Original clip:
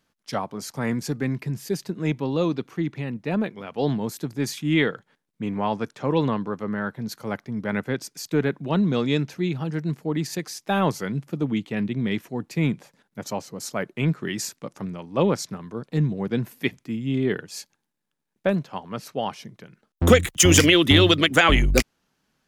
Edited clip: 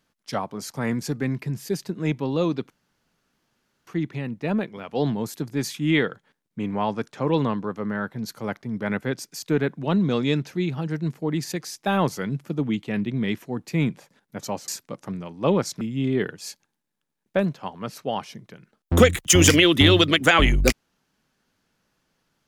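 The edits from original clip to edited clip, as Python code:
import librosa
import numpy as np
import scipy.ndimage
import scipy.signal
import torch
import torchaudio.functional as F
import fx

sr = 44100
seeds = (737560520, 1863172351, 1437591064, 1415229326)

y = fx.edit(x, sr, fx.insert_room_tone(at_s=2.7, length_s=1.17),
    fx.cut(start_s=13.51, length_s=0.9),
    fx.cut(start_s=15.54, length_s=1.37), tone=tone)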